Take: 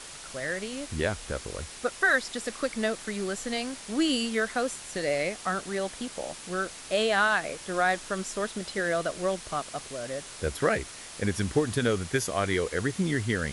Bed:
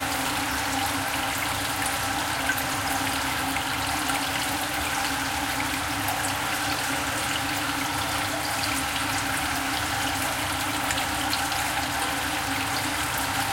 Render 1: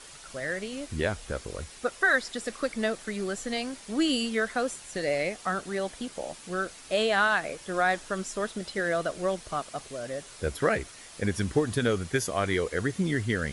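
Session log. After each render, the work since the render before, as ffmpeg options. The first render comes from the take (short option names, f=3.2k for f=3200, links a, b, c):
-af "afftdn=nr=6:nf=-44"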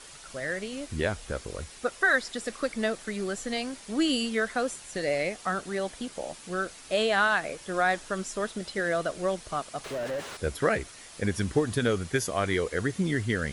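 -filter_complex "[0:a]asettb=1/sr,asplit=3[a][b][c];[a]atrim=end=9.844[d];[b]atrim=start=9.84:end=10.37,asetpts=PTS-STARTPTS,afade=t=in:d=0.004:c=qsin,afade=t=out:st=0.526:d=0.004:c=qsin,asplit=2[e][f];[f]highpass=f=720:p=1,volume=36dB,asoftclip=type=tanh:threshold=-25dB[g];[e][g]amix=inputs=2:normalize=0,lowpass=f=1.3k:p=1,volume=-6dB[h];[c]atrim=start=10.366[i];[d][h]acrossfade=d=0.004:c1=hsin:c2=qsin[j];[j][i]acrossfade=d=0.004:c1=qsin:c2=hsin"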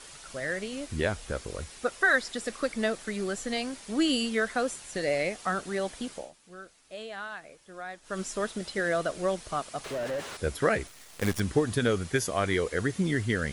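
-filter_complex "[0:a]asettb=1/sr,asplit=3[a][b][c];[a]atrim=end=10.874[d];[b]atrim=start=10.87:end=11.4,asetpts=PTS-STARTPTS,afade=t=in:d=0.004:c=qsin,afade=t=out:st=0.526:d=0.004:c=qsin,acrusher=bits=6:dc=4:mix=0:aa=0.000001[e];[c]atrim=start=11.396[f];[d][e]acrossfade=d=0.004:c1=hsin:c2=qsin[g];[g][f]acrossfade=d=0.004:c1=qsin:c2=hsin,asplit=3[h][i][j];[h]atrim=end=6.31,asetpts=PTS-STARTPTS,afade=t=out:st=6.12:d=0.19:silence=0.177828[k];[i]atrim=start=6.31:end=8.02,asetpts=PTS-STARTPTS,volume=-15dB[l];[j]atrim=start=8.02,asetpts=PTS-STARTPTS,afade=t=in:d=0.19:silence=0.177828[m];[k][l][m]concat=n=3:v=0:a=1"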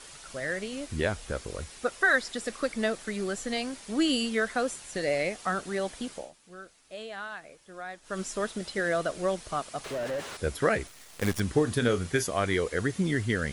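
-filter_complex "[0:a]asettb=1/sr,asplit=3[a][b][c];[a]atrim=end=11.544[d];[b]atrim=start=11.54:end=12.25,asetpts=PTS-STARTPTS,afade=t=in:d=0.004:c=qsin,afade=t=out:st=0.706:d=0.004:c=qsin,asplit=2[e][f];[f]adelay=33,volume=-12dB[g];[e][g]amix=inputs=2:normalize=0,atrim=end_sample=31311[h];[c]atrim=start=12.246[i];[d][h]acrossfade=d=0.004:c1=hsin:c2=qsin[j];[j][i]acrossfade=d=0.004:c1=qsin:c2=hsin"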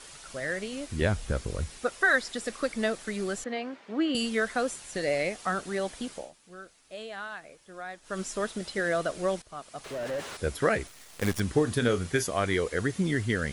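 -filter_complex "[0:a]asettb=1/sr,asplit=3[a][b][c];[a]atrim=end=1.014[d];[b]atrim=start=1.01:end=1.77,asetpts=PTS-STARTPTS,afade=t=in:d=0.004:c=qsin,afade=t=out:st=0.756:d=0.004:c=qsin,bass=f=250:g=8,treble=f=4k:g=0[e];[c]atrim=start=1.766[f];[d][e]acrossfade=d=0.004:c1=hsin:c2=qsin[g];[g][f]acrossfade=d=0.004:c1=qsin:c2=hsin,asettb=1/sr,asplit=3[h][i][j];[h]atrim=end=3.444[k];[i]atrim=start=3.44:end=4.15,asetpts=PTS-STARTPTS,afade=t=in:d=0.004:c=qsin,afade=t=out:st=0.706:d=0.004:c=qsin,highpass=250,lowpass=2.2k[l];[j]atrim=start=4.146[m];[k][l]acrossfade=d=0.004:c1=hsin:c2=qsin[n];[n][m]acrossfade=d=0.004:c1=qsin:c2=hsin,asplit=2[o][p];[o]atrim=end=9.42,asetpts=PTS-STARTPTS,afade=t=out:st=9.416:d=0.004:c=hsin:silence=0.16788[q];[p]atrim=start=9.42,asetpts=PTS-STARTPTS,afade=t=in:d=0.74:silence=0.16788[r];[q][r]concat=n=2:v=0:a=1"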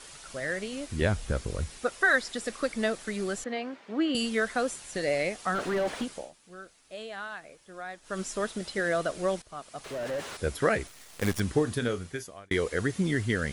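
-filter_complex "[0:a]asplit=3[a][b][c];[a]afade=t=out:st=5.54:d=0.02[d];[b]asplit=2[e][f];[f]highpass=f=720:p=1,volume=28dB,asoftclip=type=tanh:threshold=-20dB[g];[e][g]amix=inputs=2:normalize=0,lowpass=f=1k:p=1,volume=-6dB,afade=t=in:st=5.54:d=0.02,afade=t=out:st=6.03:d=0.02[h];[c]afade=t=in:st=6.03:d=0.02[i];[d][h][i]amix=inputs=3:normalize=0,asplit=2[j][k];[j]atrim=end=12.51,asetpts=PTS-STARTPTS,afade=t=out:st=11.48:d=1.03[l];[k]atrim=start=12.51,asetpts=PTS-STARTPTS,afade=t=in:d=0.004:c=hsin[m];[l][m]concat=n=2:v=0:a=1"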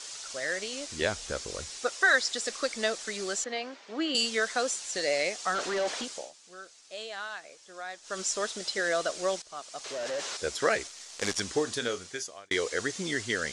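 -af "lowpass=f=6.9k:w=0.5412,lowpass=f=6.9k:w=1.3066,bass=f=250:g=-15,treble=f=4k:g=14"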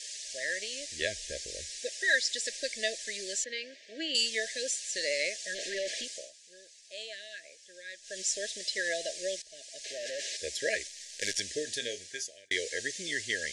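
-af "afftfilt=real='re*(1-between(b*sr/4096,670,1600))':imag='im*(1-between(b*sr/4096,670,1600))':win_size=4096:overlap=0.75,equalizer=f=180:w=0.44:g=-12.5"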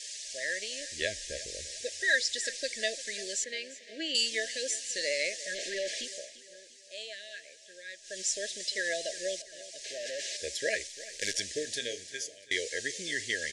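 -af "aecho=1:1:346|692|1038|1384:0.141|0.0622|0.0273|0.012"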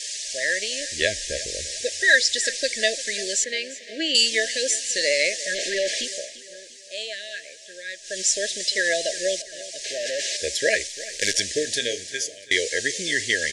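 -af "volume=10dB"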